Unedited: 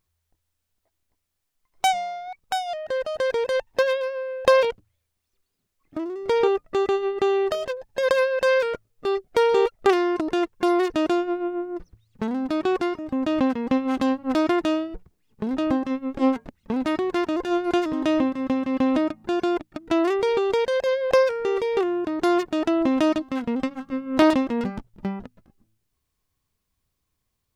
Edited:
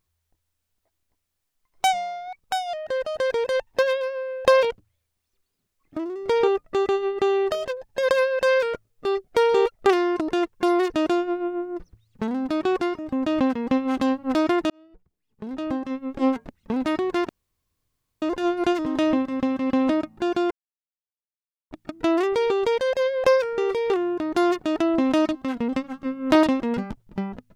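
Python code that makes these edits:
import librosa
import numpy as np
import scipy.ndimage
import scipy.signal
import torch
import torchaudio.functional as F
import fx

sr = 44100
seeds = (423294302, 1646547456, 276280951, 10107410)

y = fx.edit(x, sr, fx.fade_in_span(start_s=14.7, length_s=1.74),
    fx.insert_room_tone(at_s=17.29, length_s=0.93),
    fx.insert_silence(at_s=19.58, length_s=1.2), tone=tone)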